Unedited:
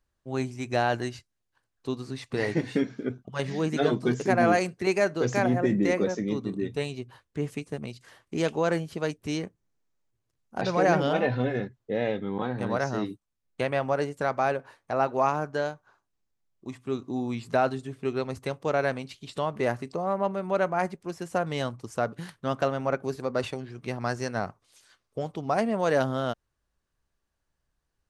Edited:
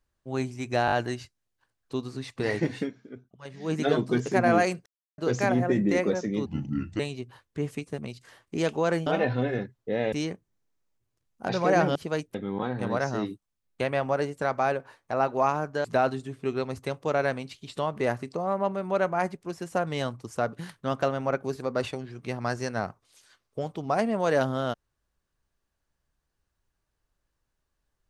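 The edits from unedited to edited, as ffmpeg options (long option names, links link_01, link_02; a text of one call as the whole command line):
ffmpeg -i in.wav -filter_complex "[0:a]asplit=15[link_01][link_02][link_03][link_04][link_05][link_06][link_07][link_08][link_09][link_10][link_11][link_12][link_13][link_14][link_15];[link_01]atrim=end=0.882[link_16];[link_02]atrim=start=0.858:end=0.882[link_17];[link_03]atrim=start=0.858:end=0.882[link_18];[link_04]atrim=start=0.858:end=2.89,asetpts=PTS-STARTPTS,afade=type=out:start_time=1.862:duration=0.17:curve=qua:silence=0.237137[link_19];[link_05]atrim=start=2.89:end=3.49,asetpts=PTS-STARTPTS,volume=-12.5dB[link_20];[link_06]atrim=start=3.49:end=4.8,asetpts=PTS-STARTPTS,afade=type=in:duration=0.17:curve=qua:silence=0.237137,afade=type=out:start_time=1.306:duration=0.004:curve=hsin[link_21];[link_07]atrim=start=4.8:end=5.12,asetpts=PTS-STARTPTS,volume=0[link_22];[link_08]atrim=start=5.12:end=6.404,asetpts=PTS-STARTPTS,afade=type=in:duration=0.004:curve=hsin[link_23];[link_09]atrim=start=6.4:end=6.79,asetpts=PTS-STARTPTS,asetrate=32193,aresample=44100,atrim=end_sample=23560,asetpts=PTS-STARTPTS[link_24];[link_10]atrim=start=6.786:end=8.862[link_25];[link_11]atrim=start=11.078:end=12.142[link_26];[link_12]atrim=start=9.248:end=11.082[link_27];[link_13]atrim=start=8.858:end=9.252[link_28];[link_14]atrim=start=12.138:end=15.642[link_29];[link_15]atrim=start=17.438[link_30];[link_16][link_17]acrossfade=duration=0.004:curve1=hsin:curve2=hsin[link_31];[link_31][link_18]acrossfade=duration=0.004:curve1=hsin:curve2=hsin[link_32];[link_19][link_20][link_21][link_22][link_23]concat=n=5:v=0:a=1[link_33];[link_32][link_33]acrossfade=duration=0.004:curve1=hsin:curve2=hsin[link_34];[link_34][link_24]acrossfade=duration=0.004:curve1=hsin:curve2=hsin[link_35];[link_35][link_25]acrossfade=duration=0.004:curve1=hsin:curve2=hsin[link_36];[link_36][link_26]acrossfade=duration=0.004:curve1=hsin:curve2=hsin[link_37];[link_37][link_27]acrossfade=duration=0.004:curve1=hsin:curve2=hsin[link_38];[link_38][link_28]acrossfade=duration=0.004:curve1=hsin:curve2=hsin[link_39];[link_39][link_29]acrossfade=duration=0.004:curve1=hsin:curve2=hsin[link_40];[link_40][link_30]acrossfade=duration=0.004:curve1=hsin:curve2=hsin" out.wav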